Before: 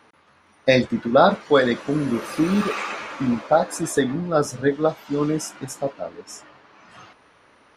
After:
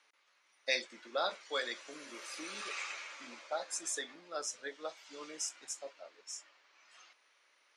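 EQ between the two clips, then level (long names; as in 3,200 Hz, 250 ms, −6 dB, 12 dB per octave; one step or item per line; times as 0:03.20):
loudspeaker in its box 270–7,800 Hz, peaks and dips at 350 Hz +5 dB, 560 Hz +5 dB, 2,200 Hz +4 dB
first difference
−3.0 dB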